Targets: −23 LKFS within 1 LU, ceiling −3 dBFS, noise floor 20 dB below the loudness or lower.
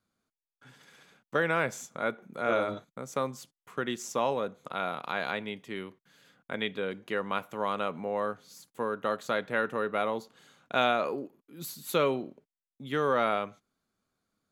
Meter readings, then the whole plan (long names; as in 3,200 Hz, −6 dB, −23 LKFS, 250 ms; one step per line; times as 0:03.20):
integrated loudness −31.5 LKFS; sample peak −10.0 dBFS; target loudness −23.0 LKFS
→ level +8.5 dB
brickwall limiter −3 dBFS